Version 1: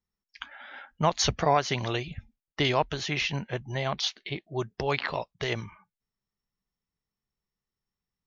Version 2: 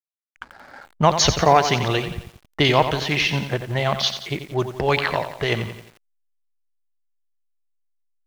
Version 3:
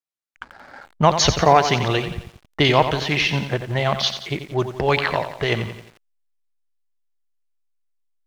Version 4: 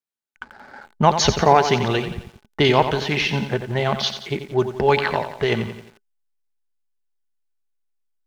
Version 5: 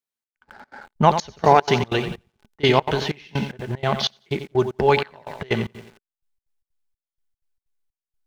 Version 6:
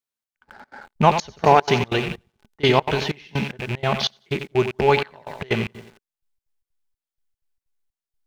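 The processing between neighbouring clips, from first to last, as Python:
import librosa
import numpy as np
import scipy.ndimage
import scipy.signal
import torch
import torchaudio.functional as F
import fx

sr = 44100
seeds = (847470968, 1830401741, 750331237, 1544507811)

y1 = fx.env_lowpass(x, sr, base_hz=1100.0, full_db=-22.5)
y1 = fx.backlash(y1, sr, play_db=-45.0)
y1 = fx.echo_crushed(y1, sr, ms=88, feedback_pct=55, bits=8, wet_db=-9.5)
y1 = F.gain(torch.from_numpy(y1), 8.0).numpy()
y2 = fx.high_shelf(y1, sr, hz=10000.0, db=-8.0)
y2 = F.gain(torch.from_numpy(y2), 1.0).numpy()
y3 = fx.small_body(y2, sr, hz=(220.0, 400.0, 850.0, 1500.0), ring_ms=60, db=8)
y3 = F.gain(torch.from_numpy(y3), -2.0).numpy()
y4 = fx.step_gate(y3, sr, bpm=188, pattern='xxx...xx.xx.', floor_db=-24.0, edge_ms=4.5)
y5 = fx.rattle_buzz(y4, sr, strikes_db=-32.0, level_db=-19.0)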